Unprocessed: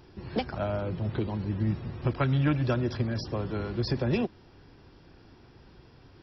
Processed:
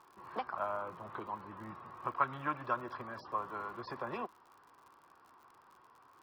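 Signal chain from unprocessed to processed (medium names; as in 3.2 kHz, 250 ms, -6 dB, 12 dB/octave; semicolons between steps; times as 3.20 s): band-pass filter 1.1 kHz, Q 6.1; crackle 75 per s -61 dBFS; trim +9.5 dB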